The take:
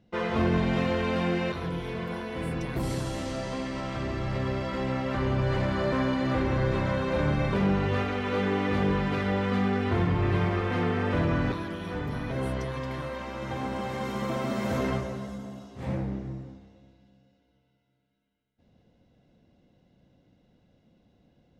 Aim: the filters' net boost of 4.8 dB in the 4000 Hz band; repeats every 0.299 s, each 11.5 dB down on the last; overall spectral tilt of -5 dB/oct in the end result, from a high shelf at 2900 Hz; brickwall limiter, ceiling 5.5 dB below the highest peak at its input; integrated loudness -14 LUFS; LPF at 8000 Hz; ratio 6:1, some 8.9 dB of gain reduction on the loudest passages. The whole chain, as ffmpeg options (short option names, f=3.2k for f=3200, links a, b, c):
-af "lowpass=8k,highshelf=f=2.9k:g=4.5,equalizer=f=4k:t=o:g=3,acompressor=threshold=-31dB:ratio=6,alimiter=level_in=3dB:limit=-24dB:level=0:latency=1,volume=-3dB,aecho=1:1:299|598|897:0.266|0.0718|0.0194,volume=22dB"